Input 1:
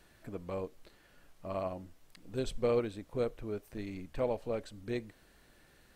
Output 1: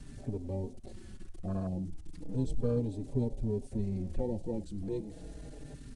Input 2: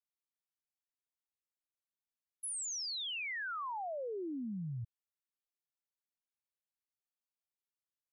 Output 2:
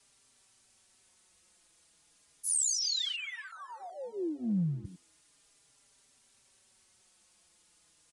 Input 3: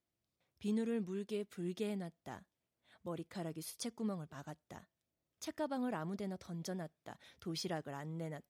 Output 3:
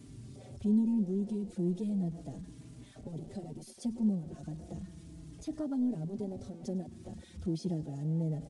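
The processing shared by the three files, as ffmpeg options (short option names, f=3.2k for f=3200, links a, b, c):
-filter_complex "[0:a]aeval=exprs='val(0)+0.5*0.00668*sgn(val(0))':c=same,lowshelf=f=490:g=5,asplit=2[a][b];[b]asplit=3[c][d][e];[c]adelay=103,afreqshift=65,volume=-20.5dB[f];[d]adelay=206,afreqshift=130,volume=-28.7dB[g];[e]adelay=309,afreqshift=195,volume=-36.9dB[h];[f][g][h]amix=inputs=3:normalize=0[i];[a][i]amix=inputs=2:normalize=0,acrossover=split=360|3000[j][k][l];[k]acompressor=threshold=-48dB:ratio=8[m];[j][m][l]amix=inputs=3:normalize=0,afwtdn=0.00794,aemphasis=mode=production:type=cd,aresample=22050,aresample=44100,asplit=2[n][o];[o]adelay=4.6,afreqshift=-0.34[p];[n][p]amix=inputs=2:normalize=1,volume=5.5dB"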